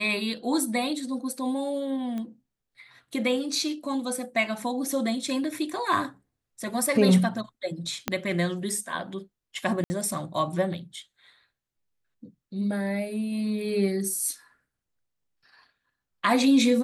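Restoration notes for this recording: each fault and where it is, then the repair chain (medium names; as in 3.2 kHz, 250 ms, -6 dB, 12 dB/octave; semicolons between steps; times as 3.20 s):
2.18 s: pop -23 dBFS
8.08 s: pop -10 dBFS
9.84–9.90 s: dropout 60 ms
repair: de-click; interpolate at 9.84 s, 60 ms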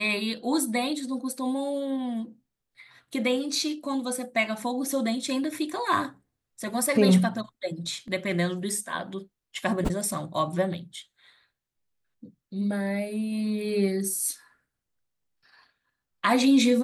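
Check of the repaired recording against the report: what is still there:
8.08 s: pop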